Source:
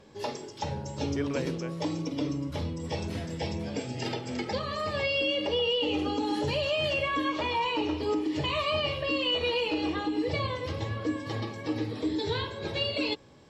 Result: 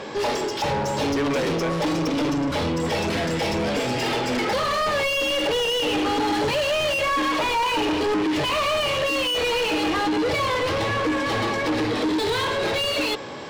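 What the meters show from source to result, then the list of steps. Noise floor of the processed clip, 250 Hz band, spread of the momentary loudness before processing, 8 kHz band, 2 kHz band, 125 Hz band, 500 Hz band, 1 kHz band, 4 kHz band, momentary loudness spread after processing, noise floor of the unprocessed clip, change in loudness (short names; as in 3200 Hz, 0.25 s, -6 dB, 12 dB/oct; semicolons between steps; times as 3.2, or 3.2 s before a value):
-26 dBFS, +6.5 dB, 7 LU, +13.5 dB, +9.0 dB, +3.0 dB, +7.5 dB, +10.0 dB, +6.5 dB, 3 LU, -41 dBFS, +7.5 dB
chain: in parallel at -0.5 dB: limiter -25.5 dBFS, peak gain reduction 7.5 dB; on the sum: overdrive pedal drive 29 dB, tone 2600 Hz, clips at -14.5 dBFS; gain -1.5 dB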